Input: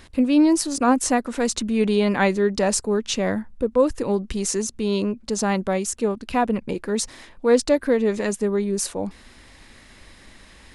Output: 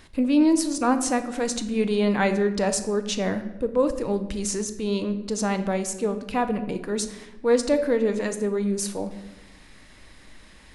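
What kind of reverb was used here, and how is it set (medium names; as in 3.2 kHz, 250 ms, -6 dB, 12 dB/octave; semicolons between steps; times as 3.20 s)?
simulated room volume 490 m³, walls mixed, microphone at 0.5 m; trim -3.5 dB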